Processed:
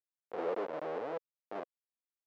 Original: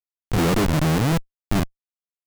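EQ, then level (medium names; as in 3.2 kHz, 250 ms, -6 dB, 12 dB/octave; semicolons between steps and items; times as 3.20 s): ladder band-pass 560 Hz, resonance 55%; distance through air 53 m; tilt EQ +3 dB/octave; 0.0 dB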